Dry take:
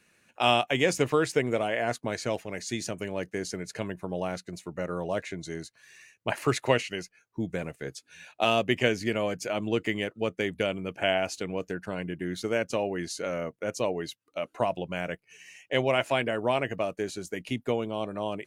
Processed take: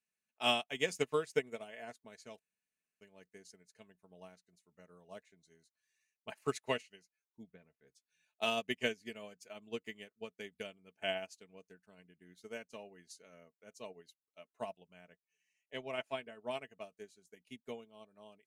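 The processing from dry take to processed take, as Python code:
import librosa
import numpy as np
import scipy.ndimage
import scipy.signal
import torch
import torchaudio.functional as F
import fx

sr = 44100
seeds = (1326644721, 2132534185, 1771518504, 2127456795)

y = fx.air_absorb(x, sr, metres=280.0, at=(7.43, 7.87))
y = fx.high_shelf(y, sr, hz=3700.0, db=-7.0, at=(14.93, 16.51))
y = fx.edit(y, sr, fx.room_tone_fill(start_s=2.39, length_s=0.62), tone=tone)
y = fx.high_shelf(y, sr, hz=3100.0, db=9.0)
y = y + 0.48 * np.pad(y, (int(4.6 * sr / 1000.0), 0))[:len(y)]
y = fx.upward_expand(y, sr, threshold_db=-34.0, expansion=2.5)
y = y * 10.0 ** (-9.0 / 20.0)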